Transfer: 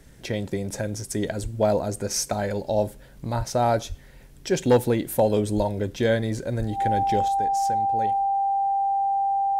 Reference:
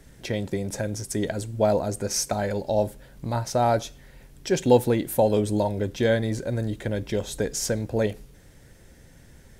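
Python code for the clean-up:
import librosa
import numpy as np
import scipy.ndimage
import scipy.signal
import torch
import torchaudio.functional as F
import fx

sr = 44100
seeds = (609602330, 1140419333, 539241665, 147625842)

y = fx.fix_declip(x, sr, threshold_db=-11.0)
y = fx.notch(y, sr, hz=790.0, q=30.0)
y = fx.fix_deplosive(y, sr, at_s=(1.42, 3.37, 3.88, 5.56, 6.58))
y = fx.fix_level(y, sr, at_s=7.28, step_db=9.5)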